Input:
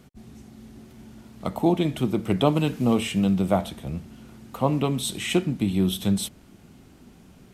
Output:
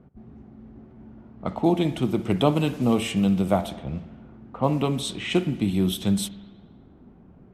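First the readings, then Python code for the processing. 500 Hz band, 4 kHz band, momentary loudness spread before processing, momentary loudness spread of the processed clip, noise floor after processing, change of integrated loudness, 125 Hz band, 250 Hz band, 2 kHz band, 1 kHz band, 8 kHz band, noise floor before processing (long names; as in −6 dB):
0.0 dB, 0.0 dB, 12 LU, 12 LU, −52 dBFS, 0.0 dB, 0.0 dB, 0.0 dB, 0.0 dB, 0.0 dB, −2.0 dB, −52 dBFS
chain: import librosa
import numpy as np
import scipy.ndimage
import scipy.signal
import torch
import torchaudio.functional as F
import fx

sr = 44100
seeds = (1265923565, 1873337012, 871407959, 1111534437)

y = fx.env_lowpass(x, sr, base_hz=920.0, full_db=-20.5)
y = fx.rev_spring(y, sr, rt60_s=1.3, pass_ms=(55,), chirp_ms=80, drr_db=15.0)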